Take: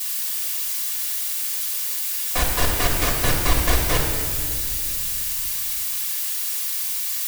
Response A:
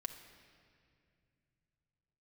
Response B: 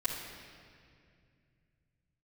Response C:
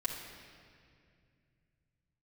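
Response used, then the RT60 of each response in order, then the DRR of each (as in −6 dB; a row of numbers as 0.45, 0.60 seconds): B; 2.3, 2.3, 2.3 seconds; 4.0, −10.0, −4.5 decibels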